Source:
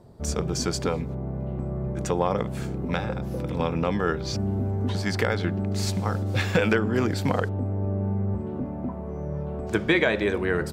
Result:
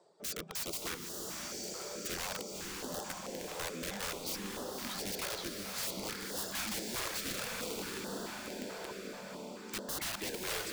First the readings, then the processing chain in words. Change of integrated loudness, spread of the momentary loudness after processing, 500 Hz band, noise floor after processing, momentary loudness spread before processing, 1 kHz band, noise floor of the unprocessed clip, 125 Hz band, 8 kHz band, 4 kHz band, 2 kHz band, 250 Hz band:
−12.0 dB, 6 LU, −15.5 dB, −47 dBFS, 9 LU, −12.0 dB, −33 dBFS, −26.0 dB, 0.0 dB, −3.5 dB, −12.5 dB, −17.5 dB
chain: reverb reduction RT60 1.3 s
Chebyshev band-pass filter 180–8,100 Hz, order 4
bass and treble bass −11 dB, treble +7 dB
feedback delay with all-pass diffusion 1,011 ms, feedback 48%, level −7.5 dB
wrap-around overflow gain 25 dB
on a send: feedback delay with all-pass diffusion 540 ms, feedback 48%, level −4 dB
on the sum: notch on a step sequencer 4.6 Hz 240–2,300 Hz
level −7 dB

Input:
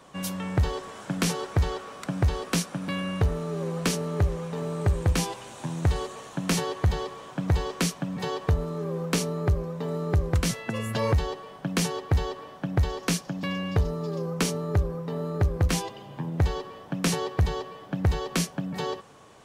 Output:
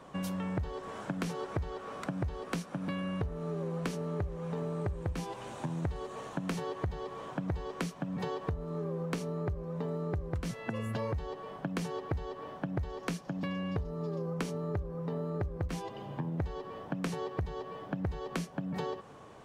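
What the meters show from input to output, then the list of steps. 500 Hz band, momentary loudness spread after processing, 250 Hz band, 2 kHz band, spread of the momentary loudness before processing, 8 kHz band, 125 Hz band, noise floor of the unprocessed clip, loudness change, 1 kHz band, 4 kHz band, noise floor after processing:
−6.5 dB, 5 LU, −6.5 dB, −9.0 dB, 9 LU, −17.5 dB, −9.5 dB, −46 dBFS, −8.5 dB, −7.0 dB, −14.0 dB, −49 dBFS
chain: high-shelf EQ 2,500 Hz −10.5 dB
downward compressor 6 to 1, threshold −34 dBFS, peak gain reduction 15 dB
level +1.5 dB

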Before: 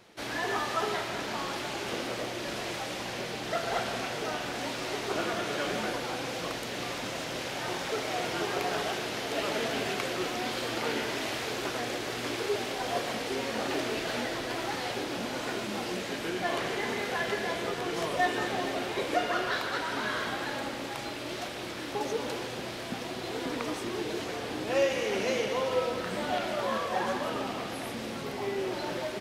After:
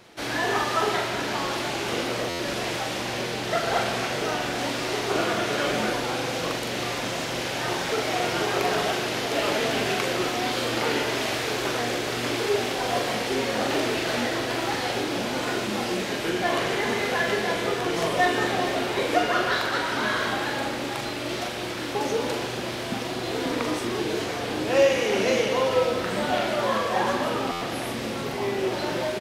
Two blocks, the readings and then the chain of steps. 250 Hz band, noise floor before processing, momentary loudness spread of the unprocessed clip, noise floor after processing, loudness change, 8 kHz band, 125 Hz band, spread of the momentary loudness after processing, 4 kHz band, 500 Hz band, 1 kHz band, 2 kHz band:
+6.5 dB, −37 dBFS, 6 LU, −31 dBFS, +6.5 dB, +6.5 dB, +8.0 dB, 6 LU, +6.5 dB, +6.5 dB, +6.5 dB, +6.5 dB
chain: double-tracking delay 42 ms −6 dB
buffer that repeats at 0:02.29/0:27.51, samples 512, times 8
level +5.5 dB

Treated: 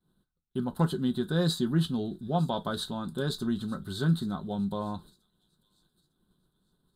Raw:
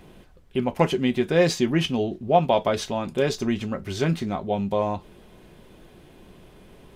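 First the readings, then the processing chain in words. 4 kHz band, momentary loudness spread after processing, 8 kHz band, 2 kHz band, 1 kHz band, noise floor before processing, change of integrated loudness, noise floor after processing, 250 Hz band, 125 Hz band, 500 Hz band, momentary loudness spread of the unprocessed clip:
−5.0 dB, 8 LU, −8.0 dB, −10.0 dB, −10.5 dB, −51 dBFS, −6.5 dB, −78 dBFS, −4.0 dB, −1.5 dB, −12.0 dB, 8 LU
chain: downward expander −36 dBFS
drawn EQ curve 110 Hz 0 dB, 160 Hz +7 dB, 620 Hz −8 dB, 1,500 Hz +5 dB, 2,300 Hz −27 dB, 3,900 Hz +11 dB, 5,800 Hz −12 dB, 8,400 Hz +7 dB
delay with a high-pass on its return 904 ms, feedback 32%, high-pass 4,800 Hz, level −17 dB
level −7 dB

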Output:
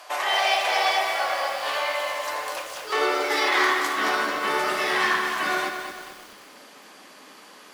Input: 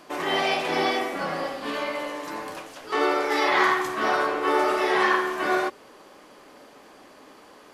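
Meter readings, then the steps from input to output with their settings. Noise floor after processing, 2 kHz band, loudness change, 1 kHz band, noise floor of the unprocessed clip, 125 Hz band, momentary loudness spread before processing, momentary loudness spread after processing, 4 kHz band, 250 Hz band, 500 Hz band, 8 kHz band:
−48 dBFS, +2.5 dB, +1.0 dB, +0.5 dB, −51 dBFS, can't be measured, 11 LU, 10 LU, +5.0 dB, −5.5 dB, −2.5 dB, +6.5 dB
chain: tilt shelving filter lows −7.5 dB, about 900 Hz
in parallel at 0 dB: downward compressor 6 to 1, threshold −29 dBFS, peak gain reduction 14 dB
on the sum: harmonic generator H 8 −29 dB, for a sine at −3 dBFS
high-pass filter sweep 670 Hz → 180 Hz, 0:02.12–0:04.62
feedback echo at a low word length 220 ms, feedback 55%, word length 6 bits, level −7 dB
level −5.5 dB

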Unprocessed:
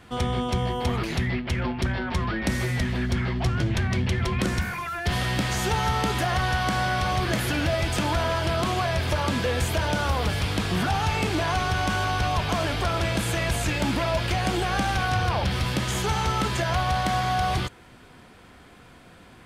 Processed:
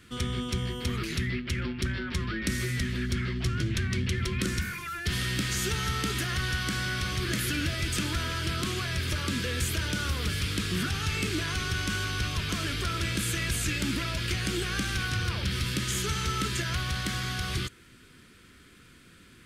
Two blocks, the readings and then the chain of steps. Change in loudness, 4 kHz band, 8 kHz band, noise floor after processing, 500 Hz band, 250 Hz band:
−4.5 dB, −1.0 dB, +1.0 dB, −55 dBFS, −10.0 dB, −4.5 dB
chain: drawn EQ curve 380 Hz 0 dB, 800 Hz −19 dB, 1,300 Hz 0 dB, 8,000 Hz +6 dB
level −4.5 dB

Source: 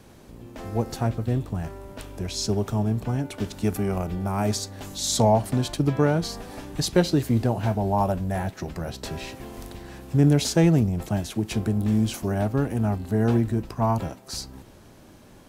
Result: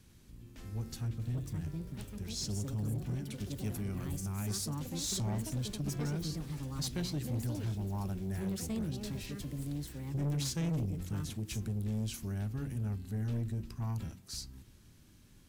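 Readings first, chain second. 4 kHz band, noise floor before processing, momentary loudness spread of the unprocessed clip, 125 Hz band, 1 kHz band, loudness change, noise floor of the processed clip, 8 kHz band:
−10.0 dB, −49 dBFS, 15 LU, −10.0 dB, −21.0 dB, −12.5 dB, −59 dBFS, −8.5 dB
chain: guitar amp tone stack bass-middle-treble 6-0-2
hum removal 45.67 Hz, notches 9
delay with pitch and tempo change per echo 779 ms, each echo +5 semitones, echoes 2, each echo −6 dB
soft clipping −36.5 dBFS, distortion −12 dB
level +7 dB

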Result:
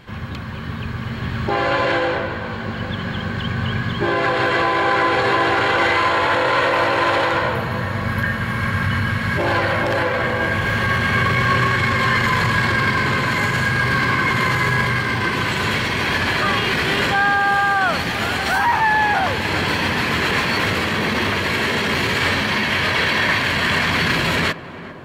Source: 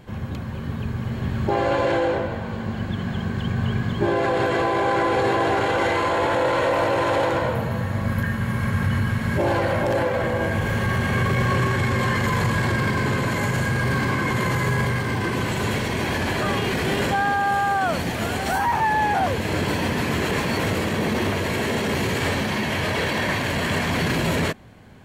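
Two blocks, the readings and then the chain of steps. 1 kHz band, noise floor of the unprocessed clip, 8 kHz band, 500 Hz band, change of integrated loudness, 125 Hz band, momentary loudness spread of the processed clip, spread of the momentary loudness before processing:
+4.5 dB, −29 dBFS, +1.0 dB, +0.5 dB, +4.5 dB, 0.0 dB, 8 LU, 5 LU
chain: flat-topped bell 2,300 Hz +8 dB 2.6 octaves
tape delay 399 ms, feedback 88%, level −13 dB, low-pass 1,100 Hz

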